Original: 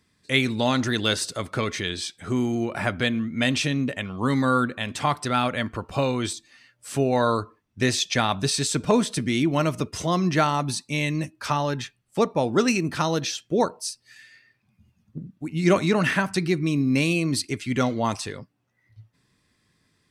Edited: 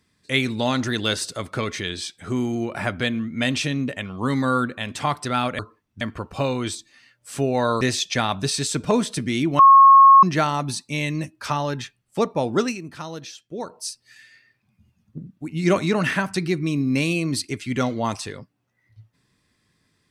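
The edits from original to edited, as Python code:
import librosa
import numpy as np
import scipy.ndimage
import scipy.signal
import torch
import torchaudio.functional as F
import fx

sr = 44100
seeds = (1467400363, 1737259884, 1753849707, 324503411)

y = fx.edit(x, sr, fx.move(start_s=7.39, length_s=0.42, to_s=5.59),
    fx.bleep(start_s=9.59, length_s=0.64, hz=1090.0, db=-6.5),
    fx.fade_down_up(start_s=12.59, length_s=1.23, db=-10.0, fade_s=0.17), tone=tone)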